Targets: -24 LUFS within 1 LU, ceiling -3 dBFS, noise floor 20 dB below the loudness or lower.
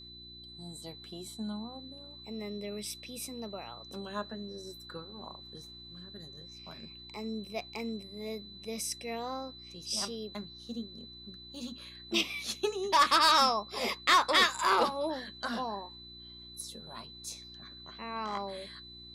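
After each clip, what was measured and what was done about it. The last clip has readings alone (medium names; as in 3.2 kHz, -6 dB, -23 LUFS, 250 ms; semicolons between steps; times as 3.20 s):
hum 60 Hz; highest harmonic 360 Hz; hum level -54 dBFS; steady tone 4 kHz; tone level -48 dBFS; loudness -32.0 LUFS; peak level -16.0 dBFS; loudness target -24.0 LUFS
-> de-hum 60 Hz, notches 6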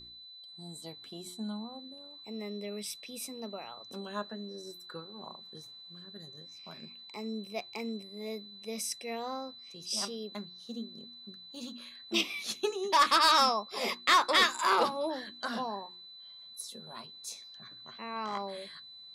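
hum not found; steady tone 4 kHz; tone level -48 dBFS
-> band-stop 4 kHz, Q 30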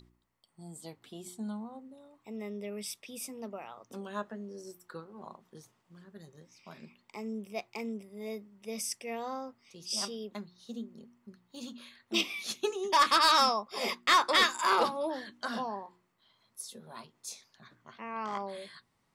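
steady tone not found; loudness -31.5 LUFS; peak level -15.0 dBFS; loudness target -24.0 LUFS
-> trim +7.5 dB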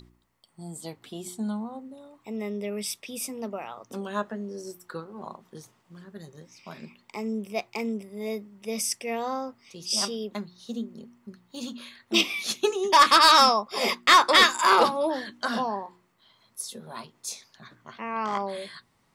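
loudness -24.0 LUFS; peak level -7.5 dBFS; noise floor -67 dBFS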